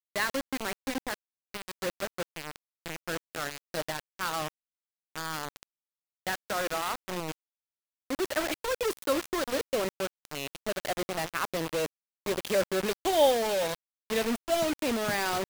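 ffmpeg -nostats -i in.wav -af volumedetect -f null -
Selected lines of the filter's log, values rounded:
mean_volume: -32.3 dB
max_volume: -11.5 dB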